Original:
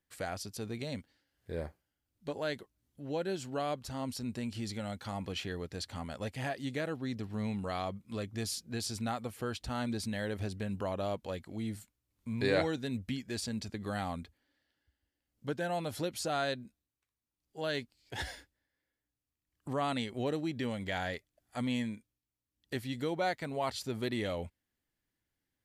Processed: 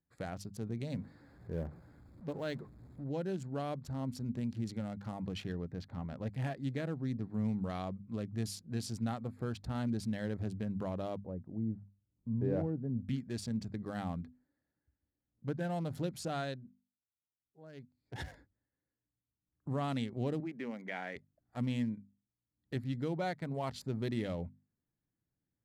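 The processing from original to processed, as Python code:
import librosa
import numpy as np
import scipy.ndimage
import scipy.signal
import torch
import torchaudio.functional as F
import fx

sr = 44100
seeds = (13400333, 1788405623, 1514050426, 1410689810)

y = fx.zero_step(x, sr, step_db=-47.5, at=(0.9, 3.04))
y = fx.lowpass(y, sr, hz=3800.0, slope=12, at=(5.52, 6.27))
y = fx.bessel_lowpass(y, sr, hz=600.0, order=2, at=(11.17, 12.99))
y = fx.cabinet(y, sr, low_hz=240.0, low_slope=24, high_hz=2700.0, hz=(300.0, 560.0, 2200.0), db=(-5, -3, 6), at=(20.4, 21.16))
y = fx.edit(y, sr, fx.fade_down_up(start_s=16.35, length_s=1.87, db=-14.5, fade_s=0.5), tone=tone)
y = fx.wiener(y, sr, points=15)
y = fx.peak_eq(y, sr, hz=150.0, db=11.0, octaves=1.7)
y = fx.hum_notches(y, sr, base_hz=50, count=5)
y = F.gain(torch.from_numpy(y), -5.5).numpy()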